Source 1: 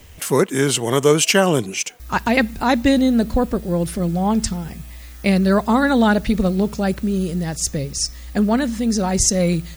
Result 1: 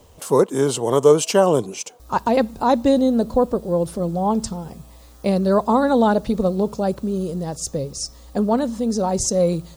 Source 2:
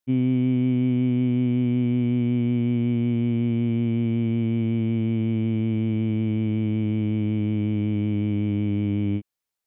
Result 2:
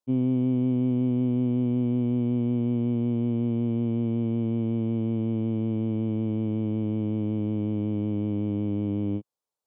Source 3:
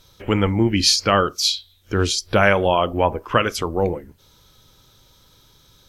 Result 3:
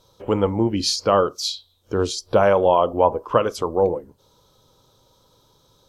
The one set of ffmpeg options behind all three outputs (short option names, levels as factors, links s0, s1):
-af "equalizer=f=125:t=o:w=1:g=5,equalizer=f=250:t=o:w=1:g=4,equalizer=f=500:t=o:w=1:g=11,equalizer=f=1000:t=o:w=1:g=11,equalizer=f=2000:t=o:w=1:g=-8,equalizer=f=4000:t=o:w=1:g=4,equalizer=f=8000:t=o:w=1:g=4,volume=0.316"